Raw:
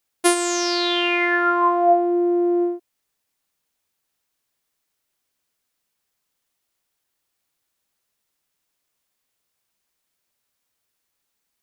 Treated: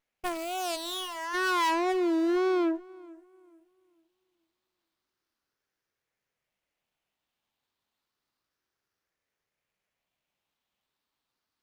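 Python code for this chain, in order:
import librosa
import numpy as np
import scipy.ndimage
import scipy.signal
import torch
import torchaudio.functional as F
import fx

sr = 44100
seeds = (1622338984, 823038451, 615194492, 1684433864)

p1 = fx.spec_ripple(x, sr, per_octave=0.51, drift_hz=0.31, depth_db=13)
p2 = fx.wow_flutter(p1, sr, seeds[0], rate_hz=2.1, depth_cents=120.0)
p3 = np.clip(10.0 ** (19.5 / 20.0) * p2, -1.0, 1.0) / 10.0 ** (19.5 / 20.0)
p4 = fx.spec_erase(p3, sr, start_s=1.92, length_s=0.44, low_hz=710.0, high_hz=1700.0)
p5 = fx.cheby_harmonics(p4, sr, harmonics=(3, 4, 5, 7), levels_db=(-21, -19, -28, -27), full_scale_db=-16.5)
p6 = fx.fixed_phaser(p5, sr, hz=490.0, stages=8, at=(0.75, 1.33), fade=0.02)
p7 = p6 + fx.echo_filtered(p6, sr, ms=438, feedback_pct=30, hz=2000.0, wet_db=-22, dry=0)
p8 = fx.running_max(p7, sr, window=5)
y = p8 * 10.0 ** (-4.0 / 20.0)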